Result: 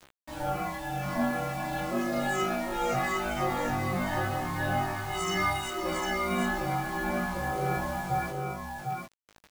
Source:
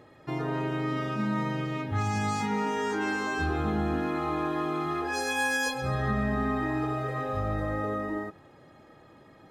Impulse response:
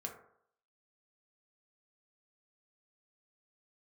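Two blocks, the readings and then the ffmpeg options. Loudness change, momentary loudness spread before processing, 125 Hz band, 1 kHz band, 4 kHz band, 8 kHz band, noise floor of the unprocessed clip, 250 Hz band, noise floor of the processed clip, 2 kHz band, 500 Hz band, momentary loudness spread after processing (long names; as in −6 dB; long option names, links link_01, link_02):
−1.0 dB, 4 LU, −3.0 dB, +2.0 dB, +2.0 dB, +1.0 dB, −55 dBFS, −3.0 dB, −61 dBFS, −0.5 dB, 0.0 dB, 7 LU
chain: -filter_complex "[0:a]afftfilt=real='re*pow(10,18/40*sin(2*PI*(0.69*log(max(b,1)*sr/1024/100)/log(2)-(-2.1)*(pts-256)/sr)))':imag='im*pow(10,18/40*sin(2*PI*(0.69*log(max(b,1)*sr/1024/100)/log(2)-(-2.1)*(pts-256)/sr)))':win_size=1024:overlap=0.75,lowpass=12000,adynamicequalizer=threshold=0.00794:dfrequency=290:dqfactor=5.9:tfrequency=290:tqfactor=5.9:attack=5:release=100:ratio=0.375:range=2:mode=boostabove:tftype=bell,aeval=exprs='val(0)*sin(2*PI*450*n/s)':channel_layout=same,asplit=2[link_01][link_02];[link_02]asoftclip=type=hard:threshold=-25.5dB,volume=-10.5dB[link_03];[link_01][link_03]amix=inputs=2:normalize=0,tremolo=f=1.7:d=0.44,acrusher=bits=6:mix=0:aa=0.000001,flanger=delay=15.5:depth=5.1:speed=0.39,asplit=2[link_04][link_05];[link_05]aecho=0:1:754:0.631[link_06];[link_04][link_06]amix=inputs=2:normalize=0"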